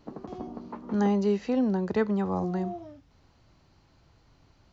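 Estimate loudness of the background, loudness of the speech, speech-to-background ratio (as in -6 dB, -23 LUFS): -42.0 LUFS, -27.5 LUFS, 14.5 dB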